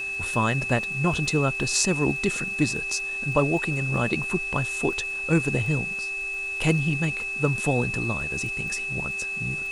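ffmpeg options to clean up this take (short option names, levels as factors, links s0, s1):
-af "adeclick=t=4,bandreject=f=390.9:t=h:w=4,bandreject=f=781.8:t=h:w=4,bandreject=f=1172.7:t=h:w=4,bandreject=f=1563.6:t=h:w=4,bandreject=f=1954.5:t=h:w=4,bandreject=f=2600:w=30,afwtdn=0.0045"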